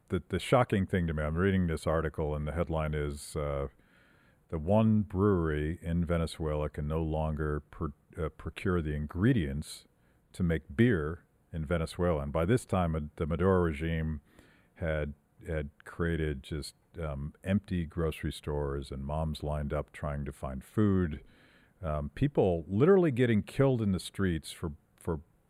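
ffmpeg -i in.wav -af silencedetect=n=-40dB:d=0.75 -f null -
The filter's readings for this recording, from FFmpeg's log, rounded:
silence_start: 3.67
silence_end: 4.52 | silence_duration: 0.85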